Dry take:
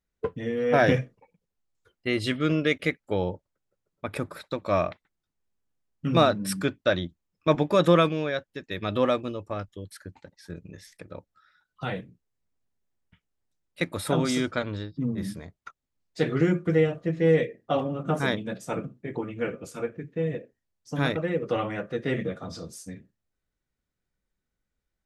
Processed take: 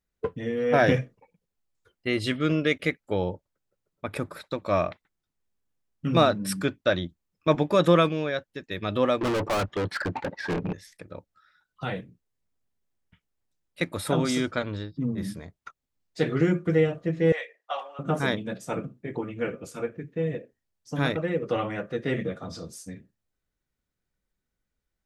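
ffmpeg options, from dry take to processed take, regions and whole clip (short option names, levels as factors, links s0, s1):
-filter_complex "[0:a]asettb=1/sr,asplit=3[s0][s1][s2];[s0]atrim=end=9.214[s3];[s1]atrim=start=9.21:end=10.73,asetpts=PTS-STARTPTS,afade=t=in:d=0.004:c=qsin,afade=t=out:st=1.516:d=0.004:c=qsin,adynamicsmooth=sensitivity=4:basefreq=1200,asplit=2[s4][s5];[s5]highpass=f=720:p=1,volume=100,asoftclip=type=tanh:threshold=0.112[s6];[s4][s6]amix=inputs=2:normalize=0,lowpass=f=7400:p=1,volume=0.501[s7];[s2]atrim=start=10.726[s8];[s3][s7]acrossfade=d=0.004:c1=hsin:c2=qsin[s9];[s9][s8]acrossfade=d=0.004:c1=qsin:c2=hsin,asettb=1/sr,asplit=3[s10][s11][s12];[s10]atrim=end=17.324[s13];[s11]atrim=start=17.32:end=17.99,asetpts=PTS-STARTPTS,afade=t=in:d=0.004:c=qsin,afade=t=out:st=0.666:d=0.004:c=qsin,highpass=f=750:w=0.5412,highpass=f=750:w=1.3066,highshelf=f=11000:g=-8.5[s14];[s12]atrim=start=17.986[s15];[s13][s14]acrossfade=d=0.004:c1=hsin:c2=qsin[s16];[s16][s15]acrossfade=d=0.004:c1=qsin:c2=hsin"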